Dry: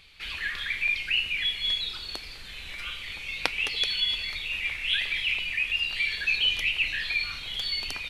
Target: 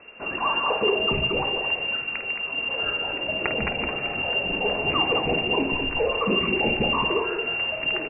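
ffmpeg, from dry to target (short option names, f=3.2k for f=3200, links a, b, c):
-filter_complex "[0:a]lowshelf=f=93:g=10,aeval=exprs='(tanh(5.01*val(0)+0.45)-tanh(0.45))/5.01':c=same,acrusher=bits=8:mix=0:aa=0.000001,asplit=2[a][b];[b]aecho=0:1:51|148|220:0.335|0.282|0.473[c];[a][c]amix=inputs=2:normalize=0,lowpass=f=2.4k:t=q:w=0.5098,lowpass=f=2.4k:t=q:w=0.6013,lowpass=f=2.4k:t=q:w=0.9,lowpass=f=2.4k:t=q:w=2.563,afreqshift=-2800,volume=8dB"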